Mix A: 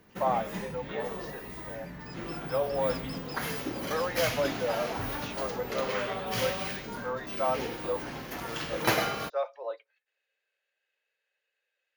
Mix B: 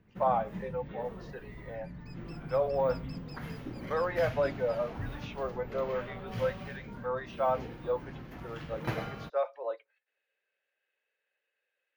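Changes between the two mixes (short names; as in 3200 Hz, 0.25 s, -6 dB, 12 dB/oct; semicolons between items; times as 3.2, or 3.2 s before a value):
first sound -11.0 dB; master: add tone controls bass +13 dB, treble -12 dB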